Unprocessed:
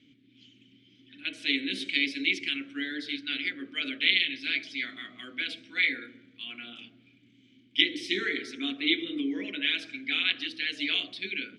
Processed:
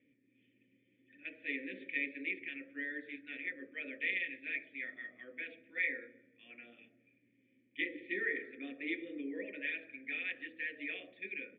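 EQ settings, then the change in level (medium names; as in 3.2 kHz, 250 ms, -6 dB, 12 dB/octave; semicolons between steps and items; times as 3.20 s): cascade formant filter e; +5.5 dB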